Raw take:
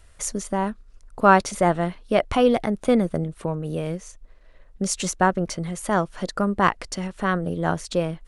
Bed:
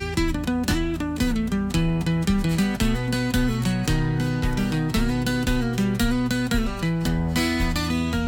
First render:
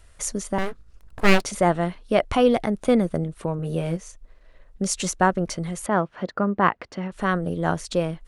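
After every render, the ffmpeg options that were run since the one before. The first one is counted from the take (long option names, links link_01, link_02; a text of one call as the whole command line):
ffmpeg -i in.wav -filter_complex "[0:a]asettb=1/sr,asplit=3[link_01][link_02][link_03];[link_01]atrim=end=0.584[link_04];[link_02]atrim=start=0.58:end=1.42,asetpts=PTS-STARTPTS,afade=type=in:duration=0.004:curve=qsin,afade=type=out:start_time=0.836:duration=0.004:curve=qsin,aeval=exprs='abs(val(0))':channel_layout=same[link_05];[link_03]atrim=start=1.416[link_06];[link_04][link_05]acrossfade=duration=0.004:curve1=hsin:curve2=qsin[link_07];[link_07][link_06]acrossfade=duration=0.004:curve1=qsin:curve2=hsin,asettb=1/sr,asplit=3[link_08][link_09][link_10];[link_08]atrim=end=3.574[link_11];[link_09]atrim=start=3.57:end=3.97,asetpts=PTS-STARTPTS,afade=type=in:duration=0.004:curve=qsin,afade=type=out:start_time=0.396:duration=0.004:curve=qsin,asplit=2[link_12][link_13];[link_13]adelay=18,volume=-4.5dB[link_14];[link_12][link_14]amix=inputs=2:normalize=0,atrim=end_sample=17640[link_15];[link_10]atrim=start=3.966[link_16];[link_11][link_15]acrossfade=duration=0.004:curve1=hsin:curve2=qsin[link_17];[link_17][link_16]acrossfade=duration=0.004:curve1=qsin:curve2=hsin,asettb=1/sr,asplit=3[link_18][link_19][link_20];[link_18]atrim=end=5.864[link_21];[link_19]atrim=start=5.86:end=7.12,asetpts=PTS-STARTPTS,afade=type=in:duration=0.004:curve=qsin,afade=type=out:start_time=1.256:duration=0.004:curve=qsin,highpass=110,lowpass=2500[link_22];[link_20]atrim=start=7.116[link_23];[link_21][link_22]acrossfade=duration=0.004:curve1=hsin:curve2=qsin[link_24];[link_24][link_23]acrossfade=duration=0.004:curve1=qsin:curve2=hsin" out.wav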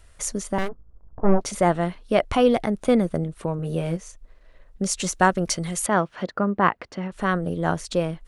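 ffmpeg -i in.wav -filter_complex "[0:a]asplit=3[link_01][link_02][link_03];[link_01]afade=type=out:start_time=0.67:duration=0.02[link_04];[link_02]lowpass=frequency=1000:width=0.5412,lowpass=frequency=1000:width=1.3066,afade=type=in:start_time=0.67:duration=0.02,afade=type=out:start_time=1.41:duration=0.02[link_05];[link_03]afade=type=in:start_time=1.41:duration=0.02[link_06];[link_04][link_05][link_06]amix=inputs=3:normalize=0,asettb=1/sr,asplit=3[link_07][link_08][link_09];[link_07]atrim=end=5.134[link_10];[link_08]atrim=start=5.13:end=6.26,asetpts=PTS-STARTPTS,afade=type=in:duration=0.004:curve=qsin,afade=type=out:start_time=1.126:duration=0.004:curve=qsin,highshelf=frequency=2500:gain=9.5[link_11];[link_09]atrim=start=6.256[link_12];[link_10][link_11]acrossfade=duration=0.004:curve1=hsin:curve2=qsin[link_13];[link_13][link_12]acrossfade=duration=0.004:curve1=qsin:curve2=hsin" out.wav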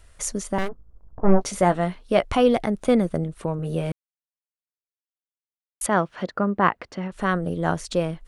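ffmpeg -i in.wav -filter_complex "[0:a]asettb=1/sr,asplit=3[link_01][link_02][link_03];[link_01]atrim=end=1.264[link_04];[link_02]atrim=start=1.26:end=2.23,asetpts=PTS-STARTPTS,afade=type=in:duration=0.004:curve=qsin,afade=type=out:start_time=0.966:duration=0.004:curve=qsin,asplit=2[link_05][link_06];[link_06]adelay=16,volume=-11dB[link_07];[link_05][link_07]amix=inputs=2:normalize=0,atrim=end_sample=42777[link_08];[link_03]atrim=start=2.226[link_09];[link_04][link_08]acrossfade=duration=0.004:curve1=hsin:curve2=qsin[link_10];[link_10][link_09]acrossfade=duration=0.004:curve1=qsin:curve2=hsin,asplit=3[link_11][link_12][link_13];[link_11]atrim=end=3.92,asetpts=PTS-STARTPTS,afade=type=out:start_time=3.916:duration=0.004:curve=hsin[link_14];[link_12]atrim=start=3.92:end=5.81,asetpts=PTS-STARTPTS,volume=0[link_15];[link_13]atrim=start=5.81,asetpts=PTS-STARTPTS,afade=type=in:duration=0.004:curve=hsin[link_16];[link_14][link_15][link_16]concat=n=3:v=0:a=1" out.wav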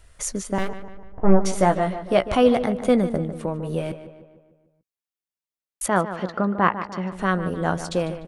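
ffmpeg -i in.wav -filter_complex "[0:a]asplit=2[link_01][link_02];[link_02]adelay=16,volume=-14dB[link_03];[link_01][link_03]amix=inputs=2:normalize=0,asplit=2[link_04][link_05];[link_05]adelay=149,lowpass=frequency=3000:poles=1,volume=-11.5dB,asplit=2[link_06][link_07];[link_07]adelay=149,lowpass=frequency=3000:poles=1,volume=0.53,asplit=2[link_08][link_09];[link_09]adelay=149,lowpass=frequency=3000:poles=1,volume=0.53,asplit=2[link_10][link_11];[link_11]adelay=149,lowpass=frequency=3000:poles=1,volume=0.53,asplit=2[link_12][link_13];[link_13]adelay=149,lowpass=frequency=3000:poles=1,volume=0.53,asplit=2[link_14][link_15];[link_15]adelay=149,lowpass=frequency=3000:poles=1,volume=0.53[link_16];[link_04][link_06][link_08][link_10][link_12][link_14][link_16]amix=inputs=7:normalize=0" out.wav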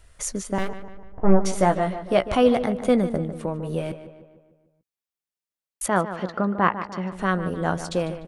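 ffmpeg -i in.wav -af "volume=-1dB" out.wav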